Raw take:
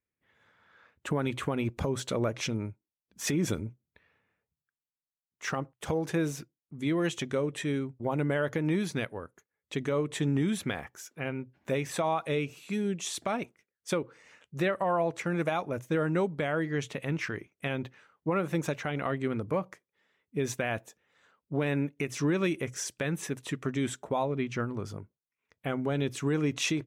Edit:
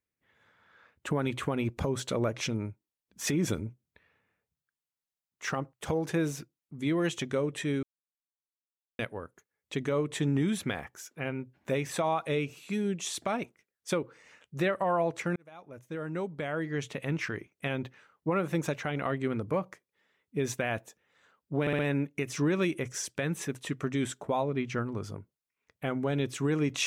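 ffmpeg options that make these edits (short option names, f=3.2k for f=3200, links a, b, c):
-filter_complex "[0:a]asplit=7[a][b][c][d][e][f][g];[a]atrim=end=7.83,asetpts=PTS-STARTPTS,afade=t=out:st=7.826:d=0.004:c=hsin[h];[b]atrim=start=7.83:end=8.99,asetpts=PTS-STARTPTS,volume=0[i];[c]atrim=start=8.99:end=15.36,asetpts=PTS-STARTPTS,afade=t=in:d=0.004:c=hsin,afade=t=out:st=6.366:d=0.004:c=hsin[j];[d]atrim=start=15.36:end=21.672,asetpts=PTS-STARTPTS,afade=t=in:d=1.72[k];[e]atrim=start=21.608:end=21.672[l];[f]atrim=start=21.608:end=21.672[m];[g]atrim=start=21.608[n];[h][i][j][k]concat=n=4:v=0:a=1[o];[o][l]acrossfade=d=0.004:c1=hsin:c2=hsin[p];[p][m]acrossfade=d=0.004:c1=hsin:c2=hsin[q];[q][n]acrossfade=d=0.004:c1=hsin:c2=hsin"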